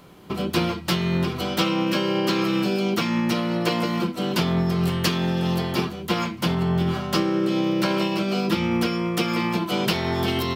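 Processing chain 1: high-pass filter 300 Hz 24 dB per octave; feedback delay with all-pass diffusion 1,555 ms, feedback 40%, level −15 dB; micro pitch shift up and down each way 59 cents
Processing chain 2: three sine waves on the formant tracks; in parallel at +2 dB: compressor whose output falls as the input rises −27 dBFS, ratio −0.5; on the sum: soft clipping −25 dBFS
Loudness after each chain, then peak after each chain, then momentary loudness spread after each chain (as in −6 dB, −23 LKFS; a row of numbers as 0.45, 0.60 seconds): −29.5, −26.5 LKFS; −12.0, −25.0 dBFS; 5, 1 LU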